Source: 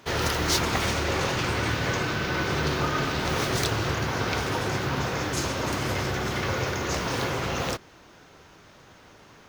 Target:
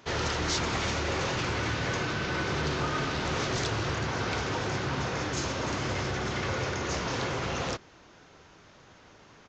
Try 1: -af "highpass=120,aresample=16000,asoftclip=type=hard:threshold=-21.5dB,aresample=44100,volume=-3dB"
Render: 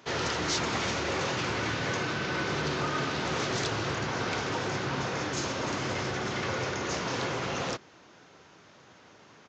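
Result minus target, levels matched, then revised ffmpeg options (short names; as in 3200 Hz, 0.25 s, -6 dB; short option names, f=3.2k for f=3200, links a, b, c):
125 Hz band -2.5 dB
-af "aresample=16000,asoftclip=type=hard:threshold=-21.5dB,aresample=44100,volume=-3dB"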